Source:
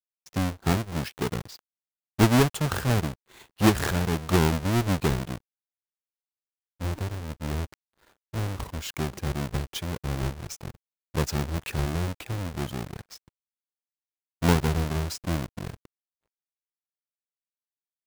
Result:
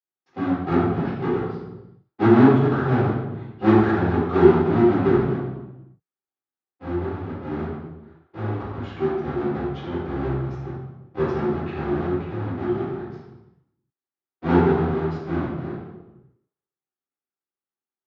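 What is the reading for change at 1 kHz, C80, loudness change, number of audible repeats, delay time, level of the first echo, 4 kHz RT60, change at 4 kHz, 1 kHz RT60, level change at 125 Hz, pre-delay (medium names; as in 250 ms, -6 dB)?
+5.5 dB, 2.5 dB, +5.5 dB, no echo, no echo, no echo, 0.80 s, -9.5 dB, 0.95 s, +2.0 dB, 3 ms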